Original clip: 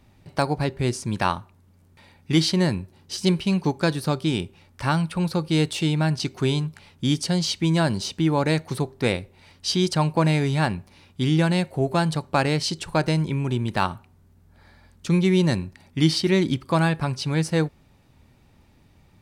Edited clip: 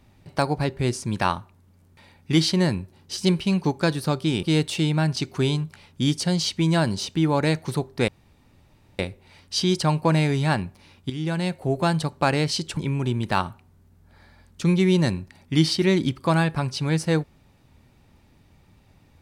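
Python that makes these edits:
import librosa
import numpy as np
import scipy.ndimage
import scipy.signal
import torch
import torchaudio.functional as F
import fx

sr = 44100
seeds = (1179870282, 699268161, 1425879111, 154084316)

y = fx.edit(x, sr, fx.cut(start_s=4.43, length_s=1.03),
    fx.insert_room_tone(at_s=9.11, length_s=0.91),
    fx.fade_in_from(start_s=11.22, length_s=0.88, curve='qsin', floor_db=-13.0),
    fx.cut(start_s=12.89, length_s=0.33), tone=tone)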